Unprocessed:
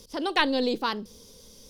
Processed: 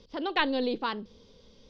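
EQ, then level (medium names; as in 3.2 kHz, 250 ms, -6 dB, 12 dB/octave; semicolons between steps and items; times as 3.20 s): low-pass 4 kHz 24 dB/octave; -3.0 dB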